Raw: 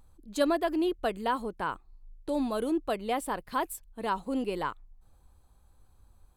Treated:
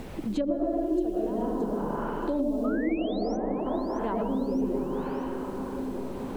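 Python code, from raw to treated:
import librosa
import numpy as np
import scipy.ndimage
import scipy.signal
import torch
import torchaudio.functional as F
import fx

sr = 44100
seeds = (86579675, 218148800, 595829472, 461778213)

p1 = fx.rev_freeverb(x, sr, rt60_s=1.8, hf_ratio=0.7, predelay_ms=65, drr_db=-8.0)
p2 = fx.env_lowpass_down(p1, sr, base_hz=640.0, full_db=-21.0)
p3 = fx.dmg_noise_colour(p2, sr, seeds[0], colour='pink', level_db=-63.0)
p4 = fx.peak_eq(p3, sr, hz=1300.0, db=-10.5, octaves=1.7)
p5 = fx.spec_paint(p4, sr, seeds[1], shape='rise', start_s=2.64, length_s=0.73, low_hz=1200.0, high_hz=6200.0, level_db=-37.0)
p6 = p5 + fx.echo_feedback(p5, sr, ms=622, feedback_pct=48, wet_db=-21, dry=0)
p7 = fx.band_squash(p6, sr, depth_pct=100)
y = p7 * 10.0 ** (-3.0 / 20.0)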